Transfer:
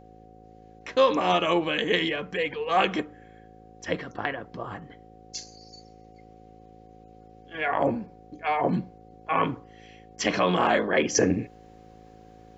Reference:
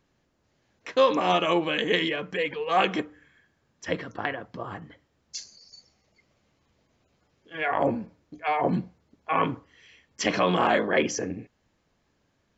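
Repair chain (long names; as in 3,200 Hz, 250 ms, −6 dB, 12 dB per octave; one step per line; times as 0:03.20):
hum removal 54.7 Hz, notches 10
notch filter 740 Hz, Q 30
level 0 dB, from 0:11.15 −9.5 dB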